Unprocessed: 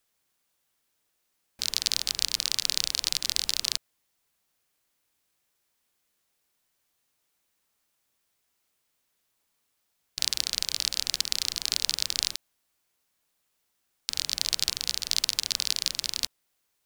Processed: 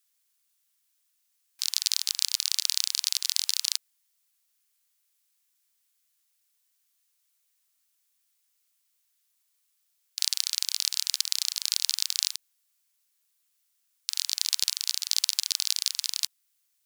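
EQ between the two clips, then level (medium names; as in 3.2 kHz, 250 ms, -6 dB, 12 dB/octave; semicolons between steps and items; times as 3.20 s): high-pass 820 Hz 24 dB/octave; tilt EQ +4.5 dB/octave; treble shelf 11 kHz -6.5 dB; -9.0 dB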